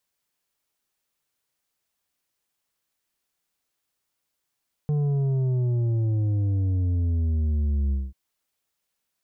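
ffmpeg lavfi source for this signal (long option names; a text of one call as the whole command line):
ffmpeg -f lavfi -i "aevalsrc='0.0841*clip((3.24-t)/0.21,0,1)*tanh(2.24*sin(2*PI*150*3.24/log(65/150)*(exp(log(65/150)*t/3.24)-1)))/tanh(2.24)':duration=3.24:sample_rate=44100" out.wav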